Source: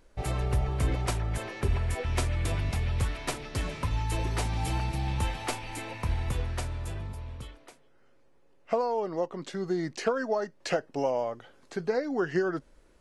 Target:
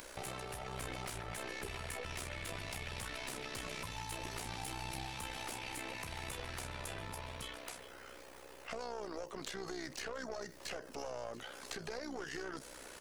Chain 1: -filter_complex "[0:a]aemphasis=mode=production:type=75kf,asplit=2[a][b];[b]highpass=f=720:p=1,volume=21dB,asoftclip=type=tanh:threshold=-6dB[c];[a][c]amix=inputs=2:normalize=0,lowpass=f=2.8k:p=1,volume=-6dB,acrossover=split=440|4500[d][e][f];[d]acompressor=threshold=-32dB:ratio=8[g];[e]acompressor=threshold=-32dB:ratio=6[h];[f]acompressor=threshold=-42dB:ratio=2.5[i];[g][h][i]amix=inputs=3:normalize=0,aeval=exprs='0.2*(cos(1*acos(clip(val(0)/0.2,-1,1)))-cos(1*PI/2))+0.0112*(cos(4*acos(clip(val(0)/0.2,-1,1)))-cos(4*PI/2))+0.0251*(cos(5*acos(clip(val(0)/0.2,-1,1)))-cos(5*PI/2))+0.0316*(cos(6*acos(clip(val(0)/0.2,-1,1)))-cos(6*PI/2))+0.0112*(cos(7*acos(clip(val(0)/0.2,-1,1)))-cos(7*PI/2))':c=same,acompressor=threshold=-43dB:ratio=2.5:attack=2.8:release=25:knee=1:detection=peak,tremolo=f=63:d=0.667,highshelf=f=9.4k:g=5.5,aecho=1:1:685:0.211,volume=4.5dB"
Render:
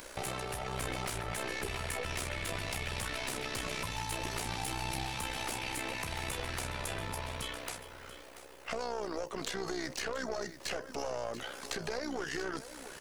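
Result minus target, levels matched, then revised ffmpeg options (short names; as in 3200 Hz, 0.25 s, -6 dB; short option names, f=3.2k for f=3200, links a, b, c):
compressor: peak gain reduction -6 dB; echo-to-direct +6.5 dB
-filter_complex "[0:a]aemphasis=mode=production:type=75kf,asplit=2[a][b];[b]highpass=f=720:p=1,volume=21dB,asoftclip=type=tanh:threshold=-6dB[c];[a][c]amix=inputs=2:normalize=0,lowpass=f=2.8k:p=1,volume=-6dB,acrossover=split=440|4500[d][e][f];[d]acompressor=threshold=-32dB:ratio=8[g];[e]acompressor=threshold=-32dB:ratio=6[h];[f]acompressor=threshold=-42dB:ratio=2.5[i];[g][h][i]amix=inputs=3:normalize=0,aeval=exprs='0.2*(cos(1*acos(clip(val(0)/0.2,-1,1)))-cos(1*PI/2))+0.0112*(cos(4*acos(clip(val(0)/0.2,-1,1)))-cos(4*PI/2))+0.0251*(cos(5*acos(clip(val(0)/0.2,-1,1)))-cos(5*PI/2))+0.0316*(cos(6*acos(clip(val(0)/0.2,-1,1)))-cos(6*PI/2))+0.0112*(cos(7*acos(clip(val(0)/0.2,-1,1)))-cos(7*PI/2))':c=same,acompressor=threshold=-53dB:ratio=2.5:attack=2.8:release=25:knee=1:detection=peak,tremolo=f=63:d=0.667,highshelf=f=9.4k:g=5.5,aecho=1:1:685:0.1,volume=4.5dB"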